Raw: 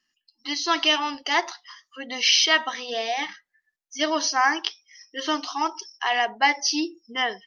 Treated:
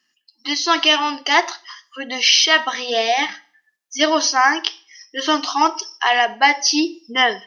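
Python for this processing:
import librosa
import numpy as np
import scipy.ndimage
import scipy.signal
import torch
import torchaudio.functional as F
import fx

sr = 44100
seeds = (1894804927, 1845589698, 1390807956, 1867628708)

p1 = scipy.signal.sosfilt(scipy.signal.butter(2, 150.0, 'highpass', fs=sr, output='sos'), x)
p2 = fx.rider(p1, sr, range_db=10, speed_s=0.5)
p3 = p1 + (p2 * 10.0 ** (1.0 / 20.0))
y = fx.rev_schroeder(p3, sr, rt60_s=0.46, comb_ms=27, drr_db=19.0)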